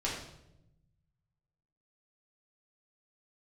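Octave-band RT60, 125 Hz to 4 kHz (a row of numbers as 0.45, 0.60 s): 2.0, 1.4, 1.0, 0.75, 0.65, 0.65 s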